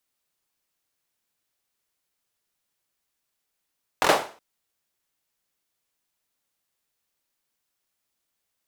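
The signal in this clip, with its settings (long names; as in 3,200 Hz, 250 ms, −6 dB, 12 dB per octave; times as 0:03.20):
synth clap length 0.37 s, apart 23 ms, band 670 Hz, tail 0.39 s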